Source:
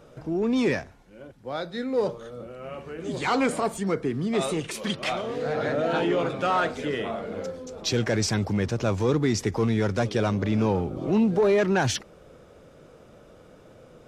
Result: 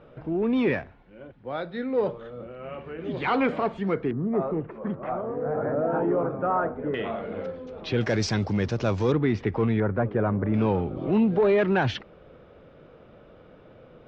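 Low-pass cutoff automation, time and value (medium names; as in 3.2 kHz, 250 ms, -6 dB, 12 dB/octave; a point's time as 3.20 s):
low-pass 24 dB/octave
3.2 kHz
from 4.11 s 1.3 kHz
from 6.94 s 3.2 kHz
from 8.01 s 5.5 kHz
from 9.12 s 3 kHz
from 9.80 s 1.7 kHz
from 10.54 s 3.5 kHz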